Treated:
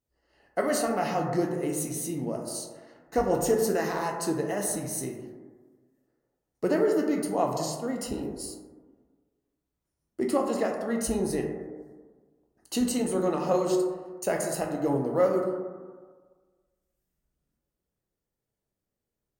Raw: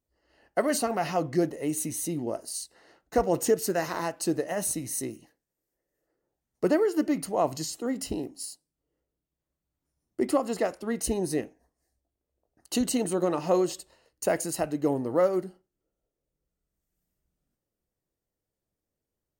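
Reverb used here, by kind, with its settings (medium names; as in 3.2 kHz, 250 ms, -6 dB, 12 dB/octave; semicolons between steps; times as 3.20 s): plate-style reverb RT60 1.5 s, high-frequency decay 0.25×, DRR 0.5 dB; trim -2.5 dB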